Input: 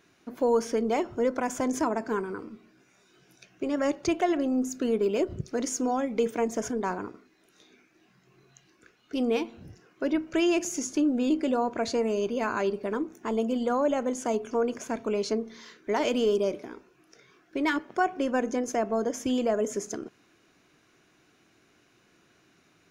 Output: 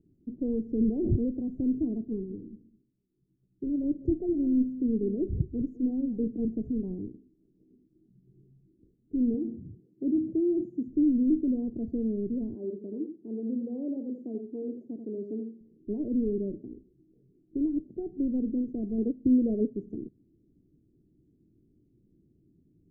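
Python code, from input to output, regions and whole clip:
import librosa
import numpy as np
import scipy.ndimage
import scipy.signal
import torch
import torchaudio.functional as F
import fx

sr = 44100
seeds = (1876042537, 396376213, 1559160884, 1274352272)

y = fx.chain(x, sr, fx.peak_eq(hz=3800.0, db=10.5, octaves=2.7),
    fx.sustainer(db_per_s=23.0), at=(0.68, 1.28))
y = fx.chain(y, sr, fx.echo_single(ms=207, db=-14.5),
    fx.band_widen(depth_pct=40), at=(2.05, 6.45))
y = fx.chain(y, sr, fx.highpass(hz=120.0, slope=12),
    fx.sustainer(db_per_s=100.0), at=(9.34, 10.88))
y = fx.chain(y, sr, fx.highpass(hz=320.0, slope=12),
    fx.echo_single(ms=84, db=-7.0), at=(12.54, 15.61))
y = fx.chain(y, sr, fx.lowpass(hz=1200.0, slope=12),
    fx.peak_eq(hz=430.0, db=7.0, octaves=2.2),
    fx.upward_expand(threshold_db=-36.0, expansion=1.5), at=(18.98, 19.76))
y = scipy.signal.sosfilt(scipy.signal.cheby2(4, 60, 1100.0, 'lowpass', fs=sr, output='sos'), y)
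y = fx.low_shelf(y, sr, hz=75.0, db=12.0)
y = F.gain(torch.from_numpy(y), 2.0).numpy()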